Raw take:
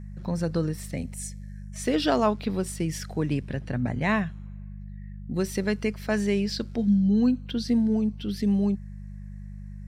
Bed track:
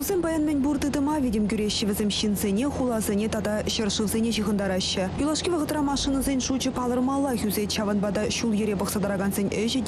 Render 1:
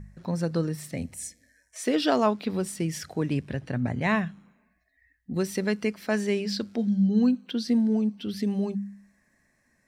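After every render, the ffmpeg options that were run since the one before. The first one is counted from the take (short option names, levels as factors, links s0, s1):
-af "bandreject=f=50:t=h:w=4,bandreject=f=100:t=h:w=4,bandreject=f=150:t=h:w=4,bandreject=f=200:t=h:w=4"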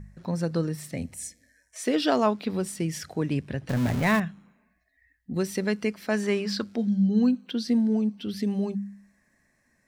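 -filter_complex "[0:a]asettb=1/sr,asplit=3[s0][s1][s2];[s0]atrim=end=3.694[s3];[s1]atrim=start=3.69:end=4.2,asetpts=PTS-STARTPTS,afade=t=in:d=0.004:c=qsin,afade=t=out:st=0.506:d=0.004:c=qsin,aeval=exprs='val(0)+0.5*0.0422*sgn(val(0))':c=same[s4];[s2]atrim=start=4.196[s5];[s3][s4]acrossfade=d=0.004:c1=hsin:c2=qsin[s6];[s6][s5]acrossfade=d=0.004:c1=qsin:c2=hsin,asettb=1/sr,asplit=3[s7][s8][s9];[s7]atrim=end=6.234[s10];[s8]atrim=start=6.23:end=6.64,asetpts=PTS-STARTPTS,afade=t=in:d=0.004:c=qsin,afade=t=out:st=0.406:d=0.004:c=qsin,equalizer=f=1200:t=o:w=0.84:g=11.5[s11];[s9]atrim=start=6.636[s12];[s10][s11]acrossfade=d=0.004:c1=hsin:c2=qsin[s13];[s13][s12]acrossfade=d=0.004:c1=qsin:c2=hsin"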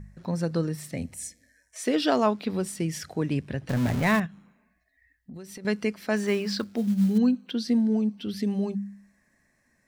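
-filter_complex "[0:a]asettb=1/sr,asplit=3[s0][s1][s2];[s0]atrim=end=4.264[s3];[s1]atrim=start=4.26:end=5.65,asetpts=PTS-STARTPTS,afade=t=in:d=0.004:c=qsin,afade=t=out:st=1.386:d=0.004:c=qsin,acompressor=threshold=0.0112:ratio=6:attack=3.2:release=140:knee=1:detection=peak[s4];[s2]atrim=start=5.646[s5];[s3][s4]acrossfade=d=0.004:c1=hsin:c2=qsin[s6];[s6][s5]acrossfade=d=0.004:c1=qsin:c2=hsin,asettb=1/sr,asplit=3[s7][s8][s9];[s7]atrim=end=6.164[s10];[s8]atrim=start=6.16:end=7.18,asetpts=PTS-STARTPTS,afade=t=in:d=0.004:c=qsin,afade=t=out:st=1.016:d=0.004:c=qsin,acrusher=bits=7:mode=log:mix=0:aa=0.000001[s11];[s9]atrim=start=7.176[s12];[s10][s11]acrossfade=d=0.004:c1=hsin:c2=qsin[s13];[s13][s12]acrossfade=d=0.004:c1=qsin:c2=hsin"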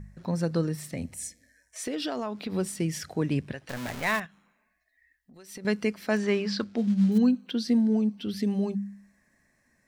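-filter_complex "[0:a]asettb=1/sr,asplit=3[s0][s1][s2];[s0]atrim=end=0.774[s3];[s1]atrim=start=0.77:end=2.52,asetpts=PTS-STARTPTS,afade=t=in:d=0.004:c=qsin,afade=t=out:st=1.746:d=0.004:c=qsin,acompressor=threshold=0.0398:ratio=6:attack=3.2:release=140:knee=1:detection=peak[s4];[s2]atrim=start=2.516[s5];[s3][s4]acrossfade=d=0.004:c1=hsin:c2=qsin[s6];[s6][s5]acrossfade=d=0.004:c1=qsin:c2=hsin,asettb=1/sr,asplit=3[s7][s8][s9];[s7]atrim=end=3.524[s10];[s8]atrim=start=3.52:end=5.55,asetpts=PTS-STARTPTS,afade=t=in:d=0.004:c=qsin,afade=t=out:st=2.026:d=0.004:c=qsin,equalizer=f=120:w=0.34:g=-15[s11];[s9]atrim=start=5.546[s12];[s10][s11]acrossfade=d=0.004:c1=hsin:c2=qsin[s13];[s13][s12]acrossfade=d=0.004:c1=qsin:c2=hsin,asettb=1/sr,asplit=3[s14][s15][s16];[s14]atrim=end=6.174[s17];[s15]atrim=start=6.17:end=7.12,asetpts=PTS-STARTPTS,afade=t=in:d=0.004:c=qsin,afade=t=out:st=0.946:d=0.004:c=qsin,lowpass=5700[s18];[s16]atrim=start=7.116[s19];[s17][s18]acrossfade=d=0.004:c1=hsin:c2=qsin[s20];[s20][s19]acrossfade=d=0.004:c1=qsin:c2=hsin"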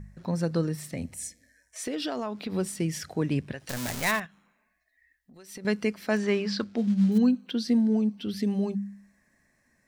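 -filter_complex "[0:a]asplit=3[s0][s1][s2];[s0]afade=t=out:st=3.59:d=0.02[s3];[s1]bass=f=250:g=3,treble=f=4000:g=11,afade=t=in:st=3.59:d=0.02,afade=t=out:st=4.1:d=0.02[s4];[s2]afade=t=in:st=4.1:d=0.02[s5];[s3][s4][s5]amix=inputs=3:normalize=0"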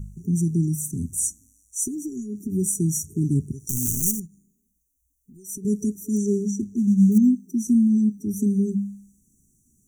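-af "afftfilt=real='re*(1-between(b*sr/4096,430,5700))':imag='im*(1-between(b*sr/4096,430,5700))':win_size=4096:overlap=0.75,bass=f=250:g=9,treble=f=4000:g=14"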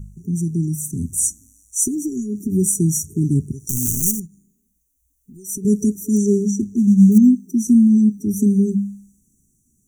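-af "dynaudnorm=f=130:g=17:m=2.51"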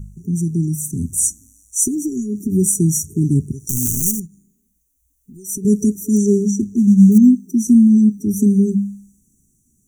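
-af "volume=1.26,alimiter=limit=0.794:level=0:latency=1"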